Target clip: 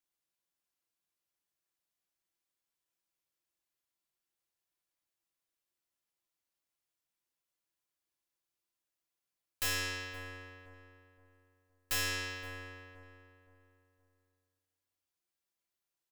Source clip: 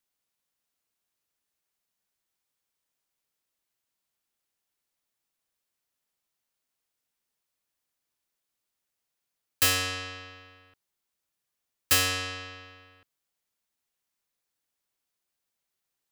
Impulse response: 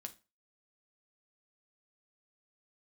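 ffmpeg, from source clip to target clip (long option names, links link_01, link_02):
-filter_complex "[0:a]aeval=exprs='0.316*(cos(1*acos(clip(val(0)/0.316,-1,1)))-cos(1*PI/2))+0.0355*(cos(8*acos(clip(val(0)/0.316,-1,1)))-cos(8*PI/2))':channel_layout=same,asplit=2[link_01][link_02];[link_02]acrusher=bits=3:mode=log:mix=0:aa=0.000001,volume=-3.5dB[link_03];[link_01][link_03]amix=inputs=2:normalize=0,asoftclip=type=tanh:threshold=-17dB,asplit=2[link_04][link_05];[link_05]adelay=519,lowpass=frequency=1600:poles=1,volume=-11dB,asplit=2[link_06][link_07];[link_07]adelay=519,lowpass=frequency=1600:poles=1,volume=0.36,asplit=2[link_08][link_09];[link_09]adelay=519,lowpass=frequency=1600:poles=1,volume=0.36,asplit=2[link_10][link_11];[link_11]adelay=519,lowpass=frequency=1600:poles=1,volume=0.36[link_12];[link_04][link_06][link_08][link_10][link_12]amix=inputs=5:normalize=0[link_13];[1:a]atrim=start_sample=2205,asetrate=70560,aresample=44100[link_14];[link_13][link_14]afir=irnorm=-1:irlink=0,volume=-2dB"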